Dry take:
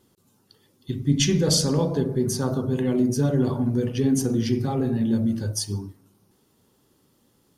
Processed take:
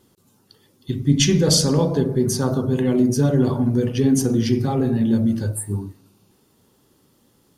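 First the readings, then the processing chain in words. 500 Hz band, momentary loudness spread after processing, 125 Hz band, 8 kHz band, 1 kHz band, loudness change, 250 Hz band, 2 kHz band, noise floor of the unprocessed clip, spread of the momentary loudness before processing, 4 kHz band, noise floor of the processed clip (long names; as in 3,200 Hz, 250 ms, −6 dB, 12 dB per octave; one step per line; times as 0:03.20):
+4.0 dB, 9 LU, +4.0 dB, +3.5 dB, +4.0 dB, +4.0 dB, +4.0 dB, +4.0 dB, −65 dBFS, 8 LU, +3.5 dB, −61 dBFS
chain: healed spectral selection 0:05.55–0:06.47, 2,300–7,300 Hz both
level +4 dB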